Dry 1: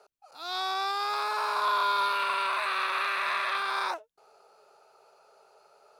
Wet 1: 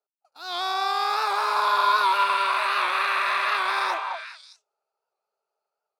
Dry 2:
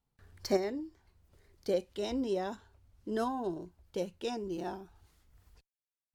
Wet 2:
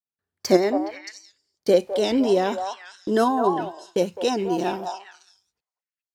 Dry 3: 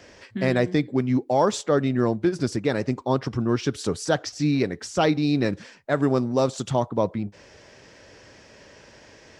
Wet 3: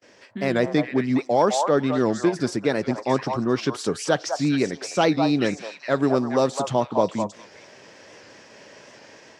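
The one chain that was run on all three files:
high-pass filter 160 Hz 12 dB per octave
noise gate −51 dBFS, range −30 dB
automatic gain control gain up to 5.5 dB
on a send: echo through a band-pass that steps 207 ms, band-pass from 870 Hz, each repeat 1.4 octaves, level −2 dB
on the sum: wow of a warped record 78 rpm, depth 100 cents
loudness normalisation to −23 LKFS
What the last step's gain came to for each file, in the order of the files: −1.5, +8.0, −3.0 decibels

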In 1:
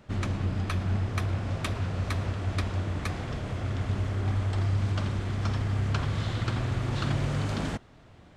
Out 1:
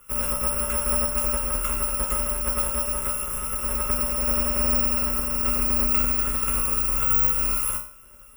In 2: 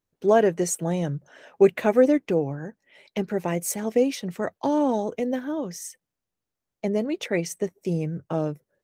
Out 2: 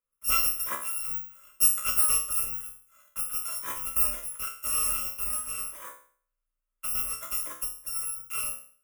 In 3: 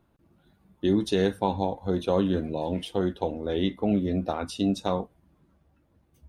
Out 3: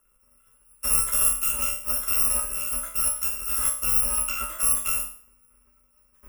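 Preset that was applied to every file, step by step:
samples in bit-reversed order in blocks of 256 samples
flat-topped bell 820 Hz +13.5 dB
phaser with its sweep stopped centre 1,900 Hz, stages 4
tuned comb filter 68 Hz, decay 0.47 s, harmonics all, mix 90%
frequency shifter −29 Hz
normalise the peak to −9 dBFS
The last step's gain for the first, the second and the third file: +13.5, +4.5, +11.0 decibels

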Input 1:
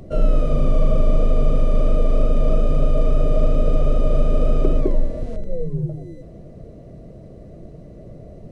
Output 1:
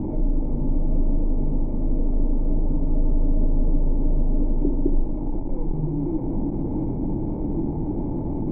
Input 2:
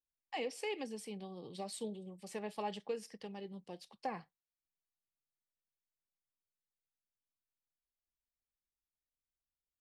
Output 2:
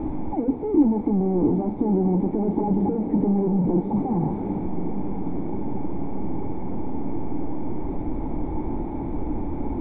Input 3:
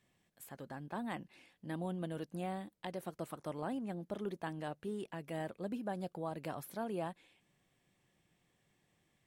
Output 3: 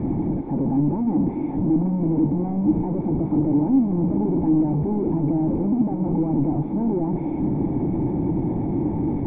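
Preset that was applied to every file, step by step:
linear delta modulator 32 kbit/s, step −18.5 dBFS
low-shelf EQ 230 Hz +8.5 dB
in parallel at 0 dB: downward compressor, threshold −15 dBFS
on the sum: flanger 0.88 Hz, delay 8.9 ms, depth 9.5 ms, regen −80%
formant resonators in series u
on a send: feedback delay with all-pass diffusion 687 ms, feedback 74%, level −12 dB
on the sum: normalise the peak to −9 dBFS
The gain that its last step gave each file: +3.0, +9.0, +8.0 decibels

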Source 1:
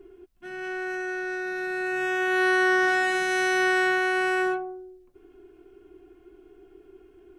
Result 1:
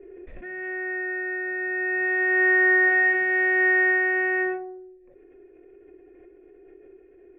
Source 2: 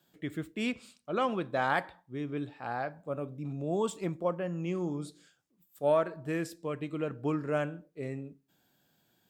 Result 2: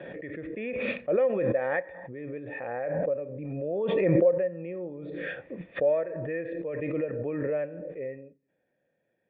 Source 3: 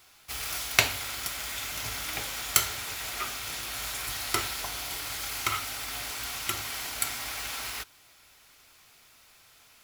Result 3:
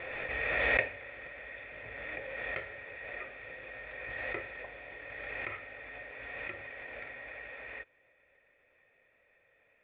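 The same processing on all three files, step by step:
formant resonators in series e
background raised ahead of every attack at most 22 dB per second
normalise the peak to −12 dBFS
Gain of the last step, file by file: +13.0, +10.0, +7.0 decibels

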